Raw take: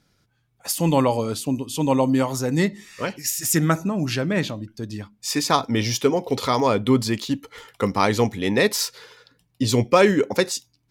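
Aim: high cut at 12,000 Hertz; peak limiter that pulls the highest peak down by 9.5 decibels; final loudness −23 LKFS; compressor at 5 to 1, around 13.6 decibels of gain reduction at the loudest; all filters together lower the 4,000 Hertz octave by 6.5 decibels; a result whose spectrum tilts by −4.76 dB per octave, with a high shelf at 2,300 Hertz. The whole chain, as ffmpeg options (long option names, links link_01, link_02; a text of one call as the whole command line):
ffmpeg -i in.wav -af "lowpass=12000,highshelf=frequency=2300:gain=-4,equalizer=frequency=4000:width_type=o:gain=-4.5,acompressor=threshold=-27dB:ratio=5,volume=12dB,alimiter=limit=-13dB:level=0:latency=1" out.wav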